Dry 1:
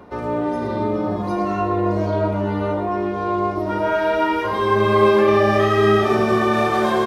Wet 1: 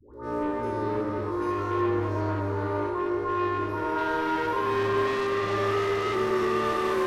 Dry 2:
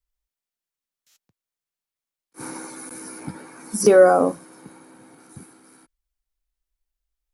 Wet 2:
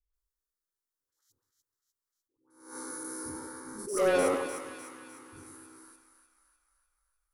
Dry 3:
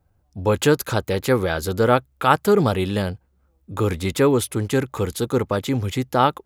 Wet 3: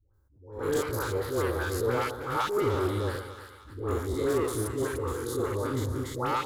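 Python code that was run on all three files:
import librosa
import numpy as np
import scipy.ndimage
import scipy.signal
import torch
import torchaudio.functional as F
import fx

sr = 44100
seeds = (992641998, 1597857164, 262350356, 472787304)

p1 = fx.spec_steps(x, sr, hold_ms=100)
p2 = fx.fixed_phaser(p1, sr, hz=690.0, stages=6)
p3 = 10.0 ** (-23.0 / 20.0) * np.tanh(p2 / 10.0 ** (-23.0 / 20.0))
p4 = fx.dispersion(p3, sr, late='highs', ms=140.0, hz=760.0)
p5 = p4 + fx.echo_split(p4, sr, split_hz=1000.0, low_ms=121, high_ms=301, feedback_pct=52, wet_db=-9.0, dry=0)
y = fx.attack_slew(p5, sr, db_per_s=100.0)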